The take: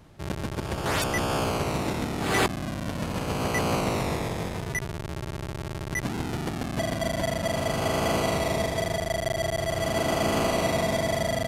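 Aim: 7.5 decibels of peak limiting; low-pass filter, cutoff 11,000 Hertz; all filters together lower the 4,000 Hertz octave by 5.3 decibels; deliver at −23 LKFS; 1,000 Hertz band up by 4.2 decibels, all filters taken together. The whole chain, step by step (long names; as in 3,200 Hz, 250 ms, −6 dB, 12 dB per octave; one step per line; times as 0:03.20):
low-pass filter 11,000 Hz
parametric band 1,000 Hz +6 dB
parametric band 4,000 Hz −7.5 dB
level +6 dB
brickwall limiter −12.5 dBFS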